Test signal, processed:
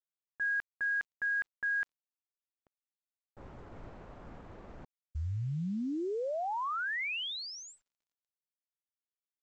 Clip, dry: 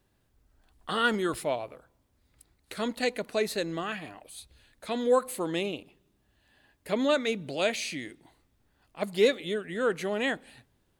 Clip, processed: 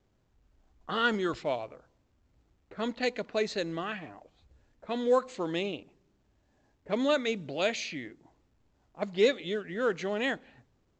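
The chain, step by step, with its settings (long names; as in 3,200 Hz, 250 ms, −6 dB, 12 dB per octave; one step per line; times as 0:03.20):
low-pass that shuts in the quiet parts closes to 770 Hz, open at −24 dBFS
level −1.5 dB
mu-law 128 kbit/s 16,000 Hz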